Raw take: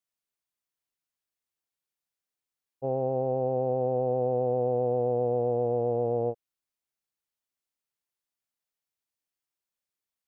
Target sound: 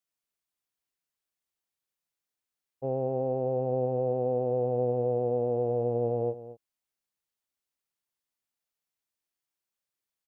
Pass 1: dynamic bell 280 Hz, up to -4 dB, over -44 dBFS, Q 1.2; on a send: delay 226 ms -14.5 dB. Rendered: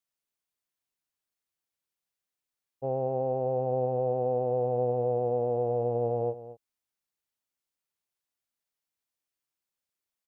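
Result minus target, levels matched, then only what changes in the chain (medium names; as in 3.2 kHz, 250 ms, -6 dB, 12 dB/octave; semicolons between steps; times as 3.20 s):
1 kHz band +3.0 dB
change: dynamic bell 870 Hz, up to -4 dB, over -44 dBFS, Q 1.2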